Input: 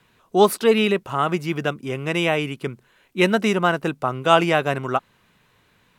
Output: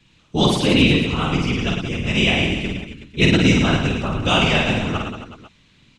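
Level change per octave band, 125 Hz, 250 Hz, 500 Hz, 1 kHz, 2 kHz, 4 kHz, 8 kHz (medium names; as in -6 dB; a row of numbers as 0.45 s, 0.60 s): +8.5 dB, +5.0 dB, -3.5 dB, -4.0 dB, +4.0 dB, +8.0 dB, +3.5 dB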